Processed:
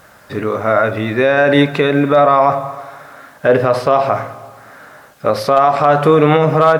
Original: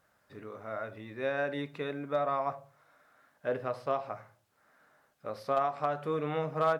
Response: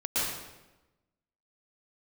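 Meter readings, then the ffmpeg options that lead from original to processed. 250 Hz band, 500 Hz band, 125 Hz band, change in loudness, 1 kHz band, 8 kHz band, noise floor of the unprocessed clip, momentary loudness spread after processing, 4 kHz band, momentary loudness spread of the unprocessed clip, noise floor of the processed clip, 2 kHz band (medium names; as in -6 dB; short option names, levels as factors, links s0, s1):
+23.5 dB, +20.5 dB, +23.0 dB, +20.5 dB, +20.0 dB, no reading, -72 dBFS, 11 LU, +22.5 dB, 15 LU, -44 dBFS, +21.0 dB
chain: -filter_complex "[0:a]acontrast=35,asplit=2[s0][s1];[1:a]atrim=start_sample=2205,asetrate=30870,aresample=44100[s2];[s1][s2]afir=irnorm=-1:irlink=0,volume=0.0266[s3];[s0][s3]amix=inputs=2:normalize=0,alimiter=level_in=11.9:limit=0.891:release=50:level=0:latency=1,volume=0.891"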